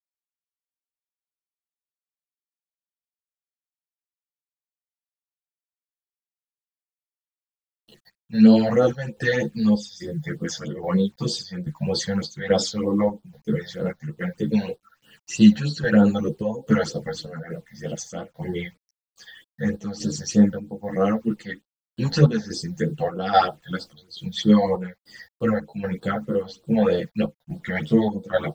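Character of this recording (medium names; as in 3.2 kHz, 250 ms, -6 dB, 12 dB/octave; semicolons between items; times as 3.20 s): a quantiser's noise floor 10-bit, dither none; phasing stages 8, 3.2 Hz, lowest notch 320–2200 Hz; chopped level 1.2 Hz, depth 60%, duty 70%; a shimmering, thickened sound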